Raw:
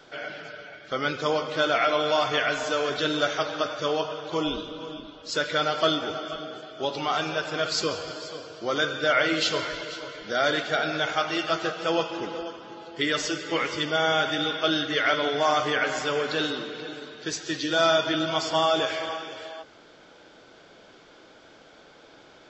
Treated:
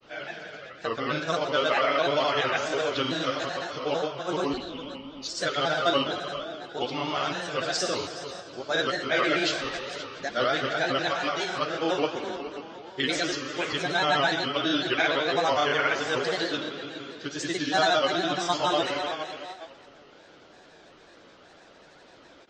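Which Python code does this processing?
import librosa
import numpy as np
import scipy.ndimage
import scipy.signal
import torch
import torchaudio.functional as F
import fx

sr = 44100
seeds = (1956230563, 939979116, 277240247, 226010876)

y = fx.rev_gated(x, sr, seeds[0], gate_ms=500, shape='falling', drr_db=5.5)
y = fx.granulator(y, sr, seeds[1], grain_ms=100.0, per_s=24.0, spray_ms=100.0, spread_st=3)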